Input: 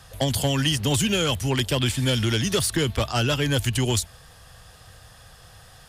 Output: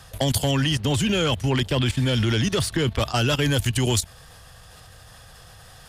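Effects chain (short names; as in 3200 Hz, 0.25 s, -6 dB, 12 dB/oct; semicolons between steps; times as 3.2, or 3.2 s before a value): level quantiser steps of 13 dB; 0.51–2.99 high shelf 6200 Hz -11.5 dB; gain +5.5 dB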